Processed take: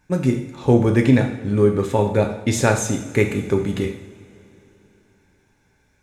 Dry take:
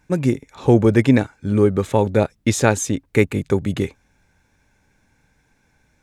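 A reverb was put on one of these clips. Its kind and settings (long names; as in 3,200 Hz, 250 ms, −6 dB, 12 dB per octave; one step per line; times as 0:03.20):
coupled-rooms reverb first 0.67 s, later 3.4 s, from −18 dB, DRR 3 dB
level −2.5 dB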